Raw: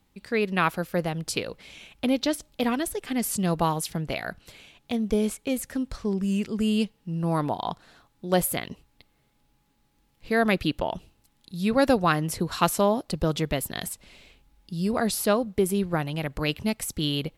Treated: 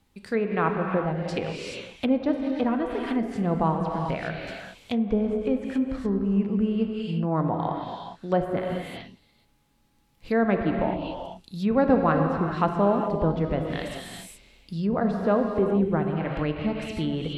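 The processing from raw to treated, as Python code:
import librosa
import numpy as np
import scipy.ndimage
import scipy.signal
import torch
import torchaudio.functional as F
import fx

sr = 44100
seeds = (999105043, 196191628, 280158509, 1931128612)

y = fx.rev_gated(x, sr, seeds[0], gate_ms=450, shape='flat', drr_db=2.5)
y = fx.env_lowpass_down(y, sr, base_hz=1300.0, full_db=-21.5)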